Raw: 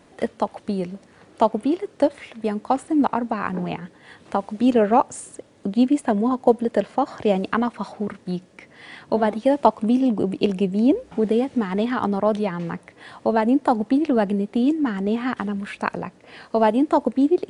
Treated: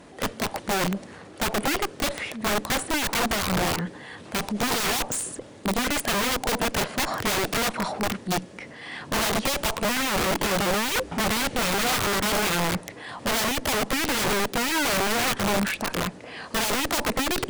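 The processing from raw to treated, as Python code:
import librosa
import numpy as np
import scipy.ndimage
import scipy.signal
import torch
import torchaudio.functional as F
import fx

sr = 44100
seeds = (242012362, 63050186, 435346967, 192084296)

y = fx.tube_stage(x, sr, drive_db=19.0, bias=0.4)
y = fx.transient(y, sr, attack_db=-6, sustain_db=4)
y = (np.mod(10.0 ** (26.0 / 20.0) * y + 1.0, 2.0) - 1.0) / 10.0 ** (26.0 / 20.0)
y = y * 10.0 ** (6.5 / 20.0)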